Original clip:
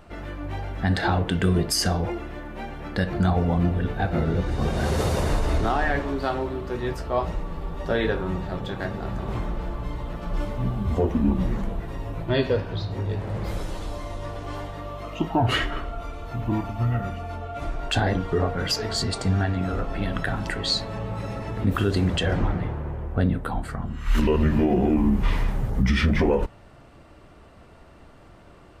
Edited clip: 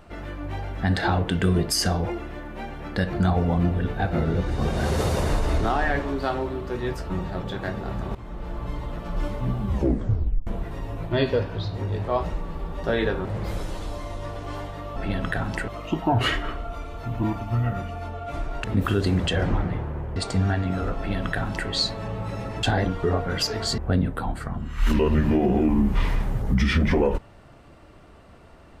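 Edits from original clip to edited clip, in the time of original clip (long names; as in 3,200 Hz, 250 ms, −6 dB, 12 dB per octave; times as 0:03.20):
0:07.10–0:08.27: move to 0:13.25
0:09.32–0:09.81: fade in, from −16.5 dB
0:10.84: tape stop 0.80 s
0:17.92–0:19.07: swap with 0:21.54–0:23.06
0:19.88–0:20.60: duplicate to 0:14.96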